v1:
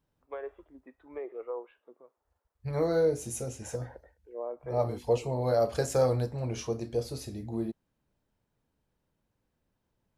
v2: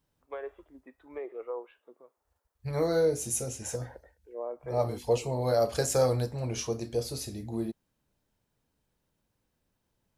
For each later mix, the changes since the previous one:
master: add treble shelf 3.2 kHz +8 dB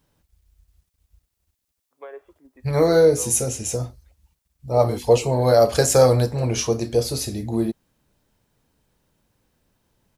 first voice: entry +1.70 s; second voice +10.5 dB

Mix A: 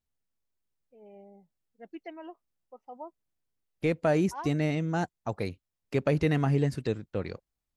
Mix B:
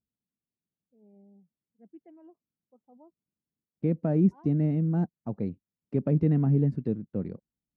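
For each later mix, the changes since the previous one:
second voice +7.5 dB; master: add band-pass filter 200 Hz, Q 1.9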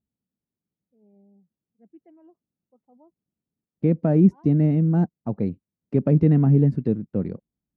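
second voice +6.5 dB

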